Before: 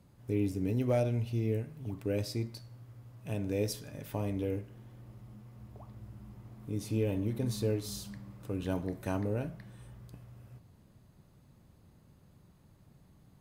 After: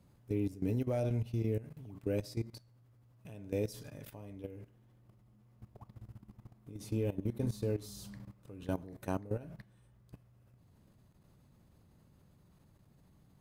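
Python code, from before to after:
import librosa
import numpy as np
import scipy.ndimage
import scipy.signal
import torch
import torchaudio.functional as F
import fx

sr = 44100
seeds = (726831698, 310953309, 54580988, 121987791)

y = fx.level_steps(x, sr, step_db=16)
y = fx.dynamic_eq(y, sr, hz=2600.0, q=0.8, threshold_db=-55.0, ratio=4.0, max_db=-3)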